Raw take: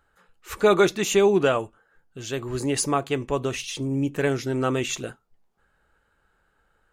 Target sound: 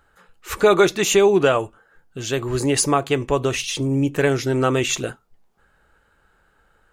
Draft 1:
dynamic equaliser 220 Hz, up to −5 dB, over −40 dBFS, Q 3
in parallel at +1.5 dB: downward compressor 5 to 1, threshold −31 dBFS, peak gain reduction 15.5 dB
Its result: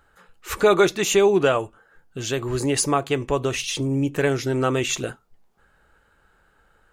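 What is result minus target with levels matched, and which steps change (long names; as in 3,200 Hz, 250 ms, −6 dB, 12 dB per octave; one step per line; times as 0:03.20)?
downward compressor: peak gain reduction +7 dB
change: downward compressor 5 to 1, threshold −22 dBFS, peak gain reduction 8 dB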